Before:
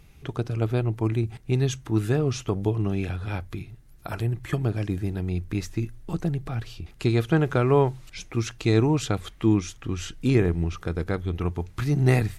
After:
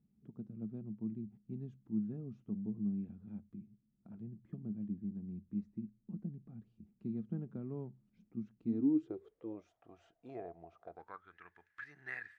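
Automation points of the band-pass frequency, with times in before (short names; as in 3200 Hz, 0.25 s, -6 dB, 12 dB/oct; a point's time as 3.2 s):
band-pass, Q 14
8.61 s 210 Hz
9.73 s 680 Hz
10.92 s 680 Hz
11.36 s 1700 Hz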